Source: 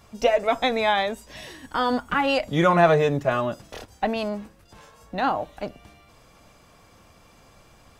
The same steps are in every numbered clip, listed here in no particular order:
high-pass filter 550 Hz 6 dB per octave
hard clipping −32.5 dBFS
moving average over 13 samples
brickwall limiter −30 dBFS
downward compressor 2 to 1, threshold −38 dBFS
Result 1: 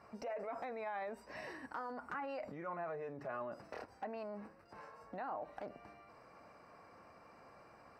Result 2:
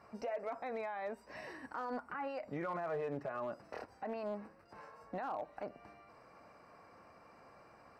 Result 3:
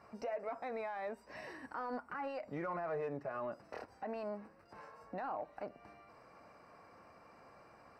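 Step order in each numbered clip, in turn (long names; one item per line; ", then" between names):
moving average, then brickwall limiter, then downward compressor, then hard clipping, then high-pass filter
high-pass filter, then downward compressor, then brickwall limiter, then moving average, then hard clipping
downward compressor, then high-pass filter, then brickwall limiter, then hard clipping, then moving average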